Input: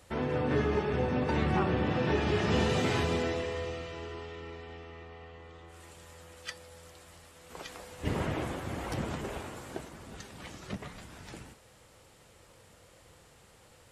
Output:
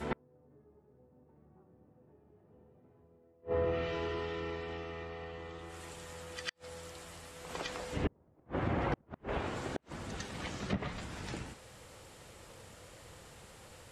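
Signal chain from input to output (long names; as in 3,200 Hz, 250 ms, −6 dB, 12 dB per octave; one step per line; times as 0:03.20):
backwards echo 102 ms −9.5 dB
treble cut that deepens with the level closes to 750 Hz, closed at −28.5 dBFS
gate with flip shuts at −25 dBFS, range −38 dB
level +4 dB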